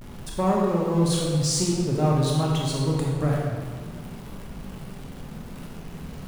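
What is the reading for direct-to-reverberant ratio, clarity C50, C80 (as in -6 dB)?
-3.5 dB, -0.5 dB, 1.5 dB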